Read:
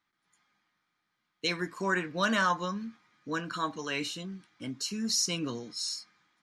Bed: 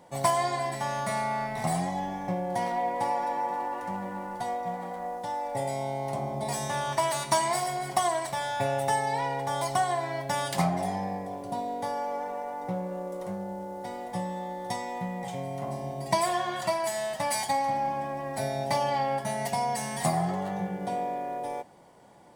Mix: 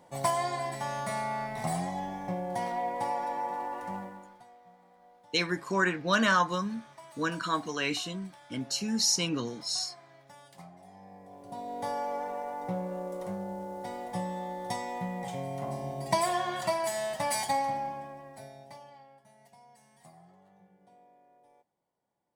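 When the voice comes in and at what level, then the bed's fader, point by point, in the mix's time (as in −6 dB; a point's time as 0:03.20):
3.90 s, +2.5 dB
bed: 0:03.98 −3.5 dB
0:04.49 −24 dB
0:10.81 −24 dB
0:11.88 −1.5 dB
0:17.59 −1.5 dB
0:19.15 −29 dB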